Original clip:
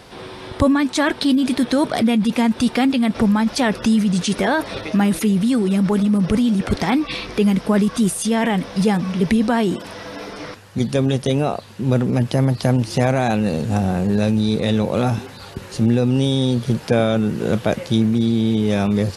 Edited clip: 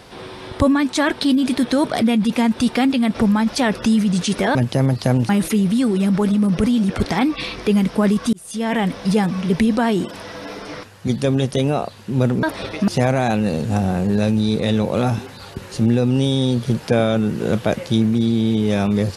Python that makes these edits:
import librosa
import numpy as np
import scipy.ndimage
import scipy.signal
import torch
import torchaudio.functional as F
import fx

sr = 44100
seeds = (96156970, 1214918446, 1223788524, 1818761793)

y = fx.edit(x, sr, fx.swap(start_s=4.55, length_s=0.45, other_s=12.14, other_length_s=0.74),
    fx.fade_in_span(start_s=8.04, length_s=0.47), tone=tone)